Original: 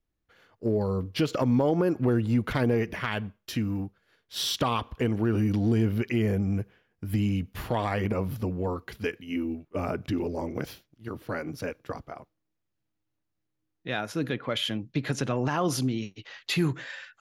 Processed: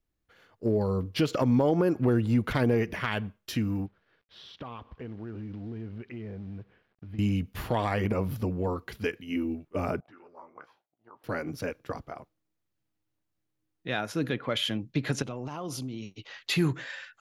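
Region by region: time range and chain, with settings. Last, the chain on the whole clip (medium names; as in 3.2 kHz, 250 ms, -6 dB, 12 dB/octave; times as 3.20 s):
3.86–7.19 s: compression 2:1, threshold -47 dBFS + companded quantiser 6-bit + distance through air 300 m
10.00–11.24 s: auto-wah 670–1400 Hz, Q 5.5, up, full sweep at -25 dBFS + doubling 17 ms -11 dB
15.22–16.29 s: peaking EQ 1.7 kHz -13.5 dB 0.3 oct + compression 3:1, threshold -35 dBFS
whole clip: none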